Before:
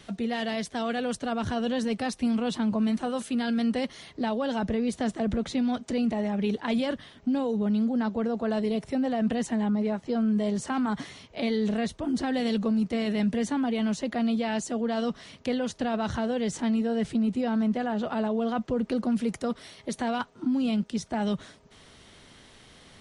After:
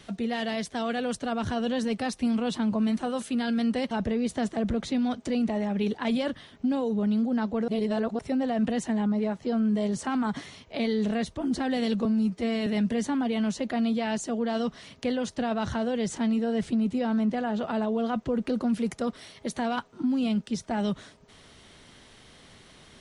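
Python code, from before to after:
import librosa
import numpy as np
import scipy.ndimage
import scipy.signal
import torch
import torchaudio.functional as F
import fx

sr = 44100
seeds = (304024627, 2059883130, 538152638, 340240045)

y = fx.edit(x, sr, fx.cut(start_s=3.91, length_s=0.63),
    fx.reverse_span(start_s=8.31, length_s=0.51),
    fx.stretch_span(start_s=12.68, length_s=0.41, factor=1.5), tone=tone)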